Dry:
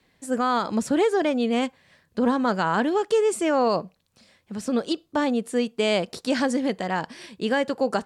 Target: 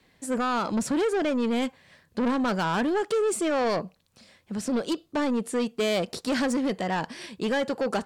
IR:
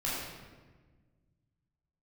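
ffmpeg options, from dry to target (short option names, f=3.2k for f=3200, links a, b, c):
-af "asoftclip=type=tanh:threshold=-23dB,volume=2dB"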